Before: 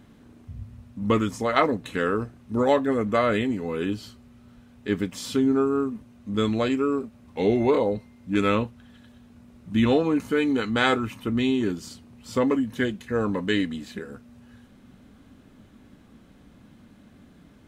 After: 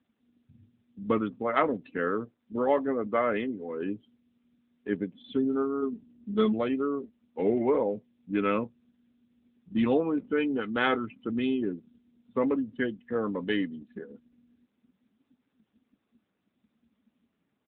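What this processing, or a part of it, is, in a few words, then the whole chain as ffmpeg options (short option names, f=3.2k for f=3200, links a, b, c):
mobile call with aggressive noise cancelling: -filter_complex "[0:a]asettb=1/sr,asplit=3[a][b][c];[a]atrim=end=2.244[d];[b]atrim=start=2.24:end=3.85,asetpts=PTS-STARTPTS,afade=t=in:d=0.004:c=qsin,afade=t=out:st=1.606:d=0.004:c=qsin,equalizer=f=150:t=o:w=0.96:g=-5[e];[c]atrim=start=3.846[f];[d][e]acrossfade=d=0.004:c1=hsin:c2=qsin[g];[g][f]acrossfade=d=0.004:c1=qsin:c2=hsin,asplit=3[h][i][j];[h]afade=t=out:st=5.81:d=0.02[k];[i]aecho=1:1:4.8:0.96,afade=t=in:st=5.81:d=0.02,afade=t=out:st=6.52:d=0.02[l];[j]afade=t=in:st=6.52:d=0.02[m];[k][l][m]amix=inputs=3:normalize=0,highpass=180,afftdn=nr=25:nf=-34,volume=-3.5dB" -ar 8000 -c:a libopencore_amrnb -b:a 10200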